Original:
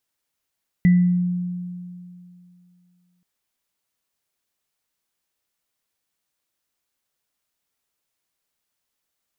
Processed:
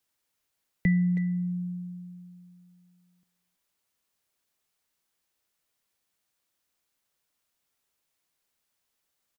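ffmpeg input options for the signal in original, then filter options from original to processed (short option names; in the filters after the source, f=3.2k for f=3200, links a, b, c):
-f lavfi -i "aevalsrc='0.316*pow(10,-3*t/2.59)*sin(2*PI*178*t)+0.0447*pow(10,-3*t/0.46)*sin(2*PI*1980*t)':d=2.38:s=44100"
-filter_complex "[0:a]acrossover=split=240|400[a][b][c];[a]acompressor=threshold=-29dB:ratio=6[d];[d][b][c]amix=inputs=3:normalize=0,asplit=2[e][f];[f]adelay=320,highpass=300,lowpass=3.4k,asoftclip=type=hard:threshold=-23dB,volume=-11dB[g];[e][g]amix=inputs=2:normalize=0"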